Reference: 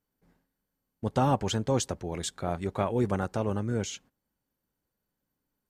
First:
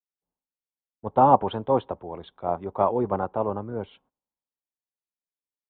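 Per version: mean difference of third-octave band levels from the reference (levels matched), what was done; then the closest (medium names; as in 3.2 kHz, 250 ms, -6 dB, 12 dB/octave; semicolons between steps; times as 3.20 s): 9.5 dB: FFT filter 130 Hz 0 dB, 1 kHz +15 dB, 1.8 kHz -4 dB; resampled via 8 kHz; three bands expanded up and down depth 70%; trim -5 dB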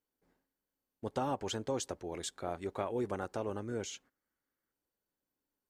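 2.5 dB: time-frequency box 4.04–4.72 s, 1.1–2.3 kHz +8 dB; resonant low shelf 240 Hz -6 dB, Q 1.5; compression 4:1, threshold -24 dBFS, peak gain reduction 4.5 dB; trim -6 dB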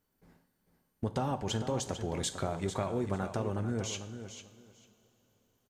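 5.5 dB: compression, threshold -35 dBFS, peak gain reduction 14 dB; feedback delay 447 ms, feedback 17%, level -10 dB; two-slope reverb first 0.5 s, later 4 s, from -17 dB, DRR 9.5 dB; trim +4.5 dB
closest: second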